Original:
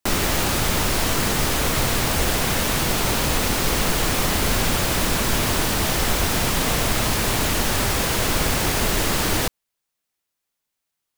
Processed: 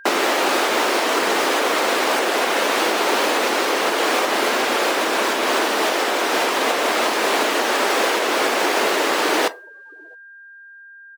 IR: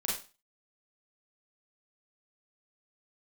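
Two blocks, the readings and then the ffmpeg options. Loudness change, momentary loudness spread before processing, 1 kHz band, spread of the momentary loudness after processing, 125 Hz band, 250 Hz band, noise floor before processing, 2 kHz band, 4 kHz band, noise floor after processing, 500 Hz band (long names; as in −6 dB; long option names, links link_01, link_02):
+2.0 dB, 0 LU, +6.5 dB, 1 LU, below −25 dB, 0.0 dB, −81 dBFS, +5.0 dB, +1.5 dB, −43 dBFS, +7.0 dB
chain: -filter_complex "[0:a]aecho=1:1:669|1338:0.0794|0.0151,alimiter=limit=-11.5dB:level=0:latency=1:release=311,highpass=frequency=330:width=0.5412,highpass=frequency=330:width=1.3066,asplit=2[link_01][link_02];[1:a]atrim=start_sample=2205[link_03];[link_02][link_03]afir=irnorm=-1:irlink=0,volume=-16dB[link_04];[link_01][link_04]amix=inputs=2:normalize=0,afftdn=noise_reduction=30:noise_floor=-36,lowpass=frequency=2500:poles=1,aeval=exprs='val(0)+0.00398*sin(2*PI*1600*n/s)':channel_layout=same,volume=8dB"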